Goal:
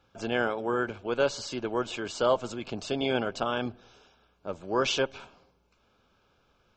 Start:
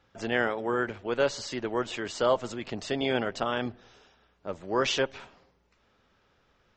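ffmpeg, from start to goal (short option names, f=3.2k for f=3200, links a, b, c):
-af "asuperstop=centerf=1900:order=4:qfactor=4.4"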